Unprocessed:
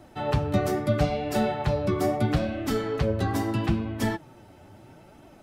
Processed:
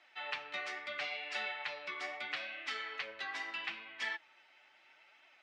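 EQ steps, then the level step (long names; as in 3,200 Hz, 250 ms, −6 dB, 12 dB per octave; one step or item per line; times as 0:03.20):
four-pole ladder band-pass 2,400 Hz, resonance 45%
high-frequency loss of the air 77 metres
parametric band 1,600 Hz −5.5 dB 1 octave
+12.5 dB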